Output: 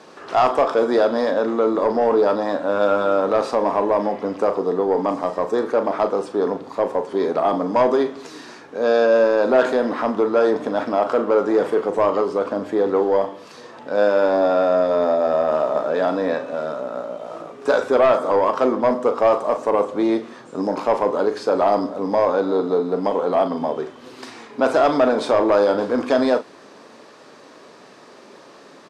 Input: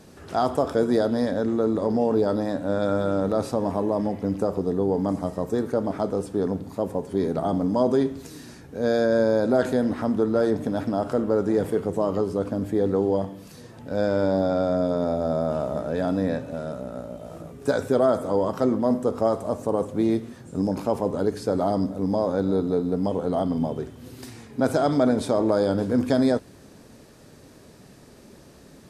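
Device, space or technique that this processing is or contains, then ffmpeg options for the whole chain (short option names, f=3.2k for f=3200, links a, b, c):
intercom: -filter_complex "[0:a]highpass=400,lowpass=4.9k,equalizer=f=1.1k:t=o:w=0.49:g=6.5,asoftclip=type=tanh:threshold=-16dB,asplit=2[a][b];[b]adelay=39,volume=-10.5dB[c];[a][c]amix=inputs=2:normalize=0,volume=8dB"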